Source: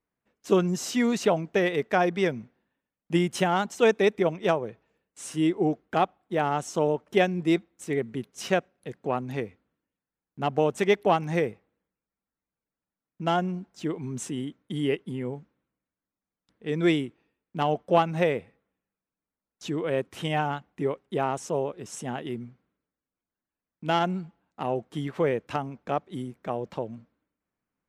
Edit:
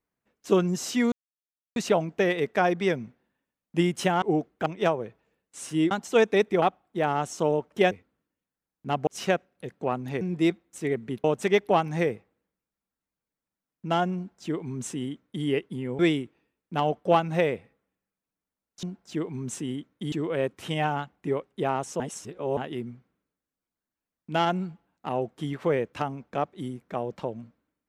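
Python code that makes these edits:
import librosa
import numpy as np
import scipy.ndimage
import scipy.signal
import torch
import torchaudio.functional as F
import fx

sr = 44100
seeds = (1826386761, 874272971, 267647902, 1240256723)

y = fx.edit(x, sr, fx.insert_silence(at_s=1.12, length_s=0.64),
    fx.swap(start_s=3.58, length_s=0.71, other_s=5.54, other_length_s=0.44),
    fx.swap(start_s=7.27, length_s=1.03, other_s=9.44, other_length_s=1.16),
    fx.duplicate(start_s=13.52, length_s=1.29, to_s=19.66),
    fx.cut(start_s=15.35, length_s=1.47),
    fx.reverse_span(start_s=21.54, length_s=0.57), tone=tone)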